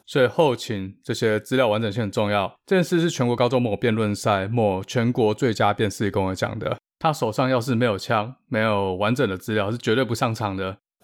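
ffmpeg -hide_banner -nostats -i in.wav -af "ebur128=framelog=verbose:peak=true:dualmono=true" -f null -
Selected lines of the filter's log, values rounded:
Integrated loudness:
  I:         -19.7 LUFS
  Threshold: -29.6 LUFS
Loudness range:
  LRA:         1.6 LU
  Threshold: -39.5 LUFS
  LRA low:   -20.4 LUFS
  LRA high:  -18.7 LUFS
True peak:
  Peak:       -6.7 dBFS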